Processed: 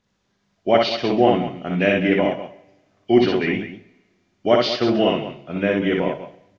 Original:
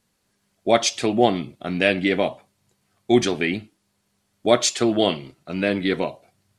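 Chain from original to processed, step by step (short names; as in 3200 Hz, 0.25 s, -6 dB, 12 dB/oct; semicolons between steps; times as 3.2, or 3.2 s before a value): nonlinear frequency compression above 2300 Hz 1.5:1; high shelf 5700 Hz -11 dB; loudspeakers at several distances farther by 21 m -2 dB, 68 m -11 dB; two-slope reverb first 0.7 s, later 1.8 s, from -17 dB, DRR 13 dB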